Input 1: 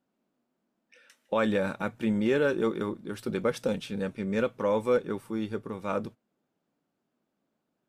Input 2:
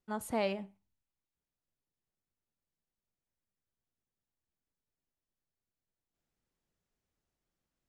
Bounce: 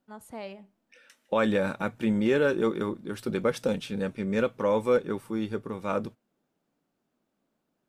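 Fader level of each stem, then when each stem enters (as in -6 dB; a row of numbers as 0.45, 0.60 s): +1.5, -7.0 dB; 0.00, 0.00 s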